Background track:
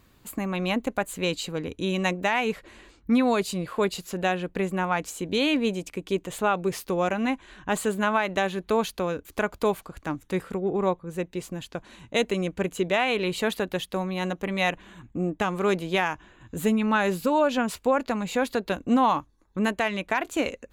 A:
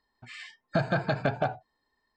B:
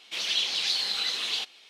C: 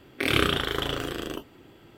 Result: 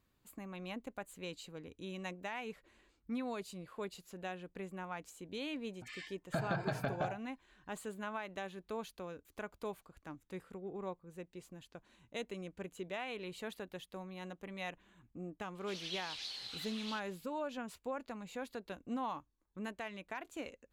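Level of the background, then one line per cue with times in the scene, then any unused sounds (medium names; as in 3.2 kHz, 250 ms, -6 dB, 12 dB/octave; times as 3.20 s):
background track -18 dB
5.59 s: add A -5 dB + compression 2.5:1, threshold -28 dBFS
15.55 s: add B -17 dB
not used: C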